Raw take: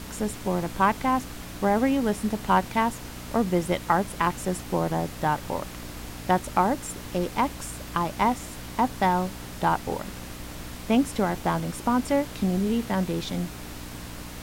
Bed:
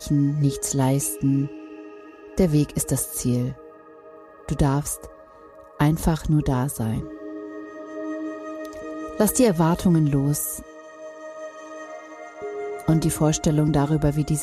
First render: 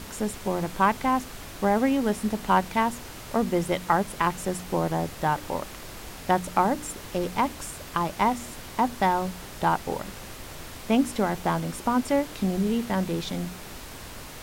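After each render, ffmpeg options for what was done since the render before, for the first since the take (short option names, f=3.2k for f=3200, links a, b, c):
-af "bandreject=f=60:t=h:w=4,bandreject=f=120:t=h:w=4,bandreject=f=180:t=h:w=4,bandreject=f=240:t=h:w=4,bandreject=f=300:t=h:w=4"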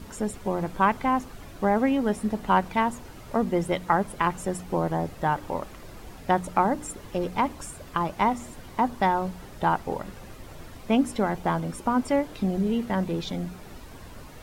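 -af "afftdn=nr=10:nf=-41"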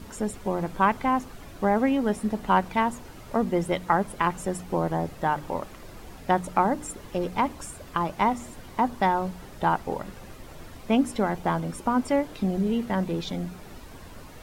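-af "bandreject=f=50:t=h:w=6,bandreject=f=100:t=h:w=6,bandreject=f=150:t=h:w=6"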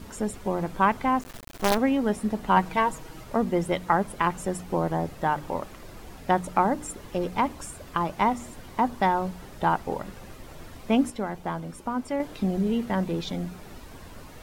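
-filter_complex "[0:a]asettb=1/sr,asplit=3[a][b][c];[a]atrim=end=1.214[d];[b]atrim=start=1.21:end=1.78,asetpts=PTS-STARTPTS,afade=t=in:d=0.004:c=qsin,afade=t=out:st=0.566:d=0.004:c=qsin,acrusher=bits=4:dc=4:mix=0:aa=0.000001[e];[c]atrim=start=1.776[f];[d][e]acrossfade=d=0.004:c1=hsin:c2=qsin[g];[g][f]acrossfade=d=0.004:c1=qsin:c2=hsin,asettb=1/sr,asplit=3[h][i][j];[h]atrim=end=2.564[k];[i]atrim=start=2.56:end=3.24,asetpts=PTS-STARTPTS,afade=t=in:d=0.004:c=qsin,afade=t=out:st=0.676:d=0.004:c=qsin,aecho=1:1:6.3:0.65,atrim=end_sample=29988[l];[j]atrim=start=3.236[m];[k][l]acrossfade=d=0.004:c1=hsin:c2=qsin[n];[n][m]acrossfade=d=0.004:c1=qsin:c2=hsin,asplit=3[o][p][q];[o]atrim=end=11.102[r];[p]atrim=start=11.098:end=12.202,asetpts=PTS-STARTPTS,volume=-5.5dB[s];[q]atrim=start=12.198[t];[r][s]acrossfade=d=0.004:c1=hsin:c2=hsin[u];[u][t]acrossfade=d=0.004:c1=hsin:c2=hsin"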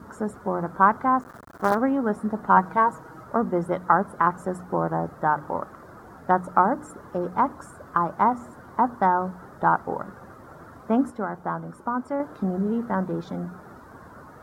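-af "highpass=95,highshelf=f=1.9k:t=q:w=3:g=-11"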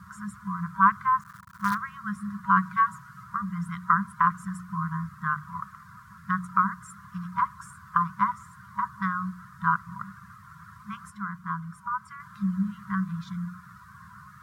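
-af "afftfilt=real='re*(1-between(b*sr/4096,210,960))':imag='im*(1-between(b*sr/4096,210,960))':win_size=4096:overlap=0.75,highpass=77"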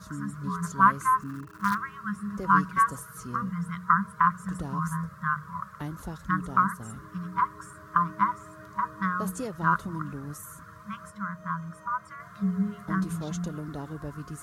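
-filter_complex "[1:a]volume=-17dB[a];[0:a][a]amix=inputs=2:normalize=0"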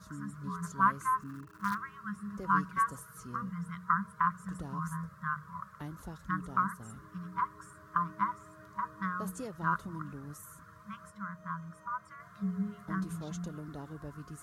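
-af "volume=-7dB"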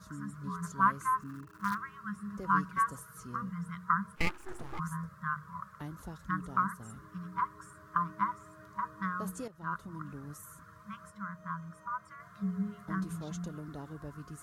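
-filter_complex "[0:a]asplit=3[a][b][c];[a]afade=t=out:st=4.15:d=0.02[d];[b]aeval=exprs='abs(val(0))':c=same,afade=t=in:st=4.15:d=0.02,afade=t=out:st=4.78:d=0.02[e];[c]afade=t=in:st=4.78:d=0.02[f];[d][e][f]amix=inputs=3:normalize=0,asplit=2[g][h];[g]atrim=end=9.48,asetpts=PTS-STARTPTS,afade=t=out:st=9.476:d=0.004:c=hsin:silence=0.251189[i];[h]atrim=start=9.48,asetpts=PTS-STARTPTS,afade=t=in:d=0.69:silence=0.251189[j];[i][j]concat=n=2:v=0:a=1"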